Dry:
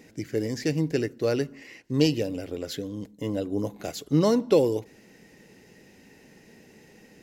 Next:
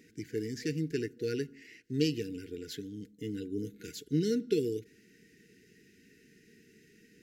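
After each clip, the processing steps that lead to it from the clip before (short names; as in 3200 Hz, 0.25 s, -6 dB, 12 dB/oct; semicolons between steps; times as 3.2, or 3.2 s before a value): FFT band-reject 480–1400 Hz; low shelf 62 Hz -5.5 dB; gain -7 dB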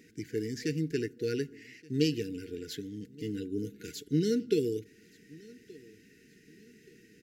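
feedback echo 1.175 s, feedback 37%, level -23 dB; gain +1.5 dB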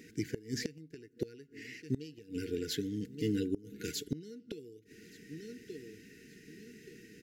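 flipped gate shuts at -25 dBFS, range -24 dB; gain +4 dB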